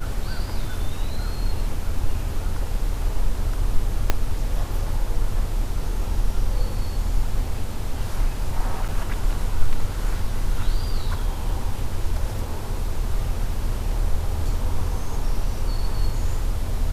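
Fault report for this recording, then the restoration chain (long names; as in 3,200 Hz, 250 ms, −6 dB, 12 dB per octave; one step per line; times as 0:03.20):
0:04.10: click −4 dBFS
0:08.88–0:08.89: drop-out 6.7 ms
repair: click removal
repair the gap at 0:08.88, 6.7 ms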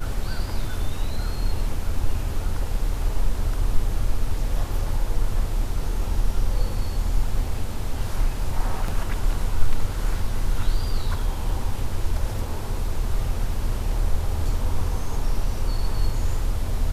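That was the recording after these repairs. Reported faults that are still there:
0:04.10: click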